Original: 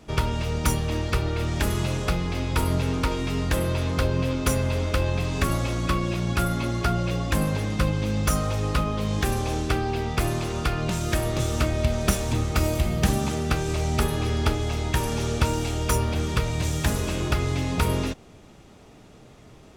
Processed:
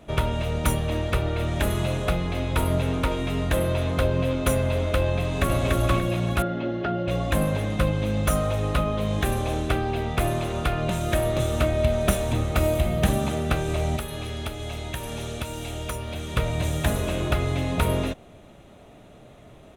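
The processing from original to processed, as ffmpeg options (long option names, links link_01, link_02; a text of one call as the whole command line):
ffmpeg -i in.wav -filter_complex "[0:a]asplit=2[link_01][link_02];[link_02]afade=type=in:start_time=5.2:duration=0.01,afade=type=out:start_time=5.7:duration=0.01,aecho=0:1:290|580|870|1160|1450:0.794328|0.278015|0.0973052|0.0340568|0.0119199[link_03];[link_01][link_03]amix=inputs=2:normalize=0,asettb=1/sr,asplit=3[link_04][link_05][link_06];[link_04]atrim=end=6.424[link_07];[link_05]atrim=start=6.42:end=7.08,asetpts=PTS-STARTPTS,afade=type=in:duration=0.004:curve=qsin,afade=type=out:start_time=0.656:duration=0.004:curve=qsin,highpass=170,equalizer=frequency=340:width_type=q:width=4:gain=4,equalizer=frequency=690:width_type=q:width=4:gain=-4,equalizer=frequency=1100:width_type=q:width=4:gain=-10,equalizer=frequency=2300:width_type=q:width=4:gain=-9,equalizer=frequency=3700:width_type=q:width=4:gain=-7,lowpass=frequency=3900:width=0.5412,lowpass=frequency=3900:width=1.3066[link_08];[link_06]atrim=start=7.076[link_09];[link_07][link_08]acrossfade=duration=0.004:curve1=hsin:curve2=qsin[link_10];[link_10][link_09]acrossfade=duration=0.004:curve1=qsin:curve2=hsin,asettb=1/sr,asplit=3[link_11][link_12][link_13];[link_11]atrim=end=13.964[link_14];[link_12]atrim=start=13.96:end=16.37,asetpts=PTS-STARTPTS,afade=type=in:duration=0.004:curve=qsin,afade=type=out:start_time=2.406:duration=0.004:curve=qsin,acrossover=split=2200|7500[link_15][link_16][link_17];[link_15]acompressor=threshold=-31dB:ratio=4[link_18];[link_16]acompressor=threshold=-37dB:ratio=4[link_19];[link_17]acompressor=threshold=-41dB:ratio=4[link_20];[link_18][link_19][link_20]amix=inputs=3:normalize=0[link_21];[link_13]atrim=start=16.366[link_22];[link_14][link_21]acrossfade=duration=0.004:curve1=hsin:curve2=qsin[link_23];[link_23][link_22]acrossfade=duration=0.004:curve1=qsin:curve2=hsin,superequalizer=8b=2:14b=0.316:15b=0.562" out.wav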